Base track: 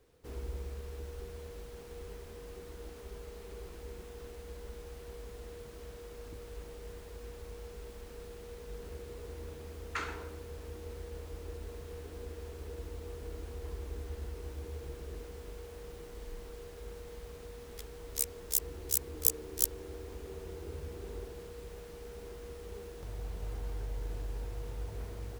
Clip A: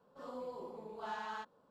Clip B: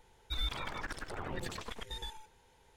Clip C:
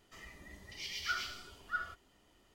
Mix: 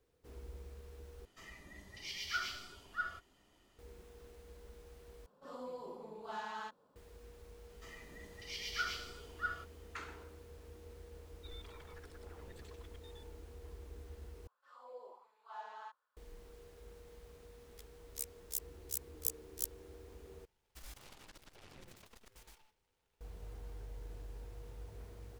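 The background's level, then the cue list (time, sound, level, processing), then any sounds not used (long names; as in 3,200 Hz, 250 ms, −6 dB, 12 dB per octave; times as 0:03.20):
base track −9.5 dB
0:01.25: overwrite with C −1.5 dB
0:05.26: overwrite with A −1.5 dB + high-shelf EQ 4,200 Hz +4.5 dB
0:07.70: mix in C −1.5 dB
0:11.13: mix in B −17.5 dB
0:14.47: overwrite with A −11 dB + auto-filter high-pass sine 1.4 Hz 520–1,600 Hz
0:20.45: overwrite with B −17 dB + short delay modulated by noise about 1,800 Hz, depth 0.18 ms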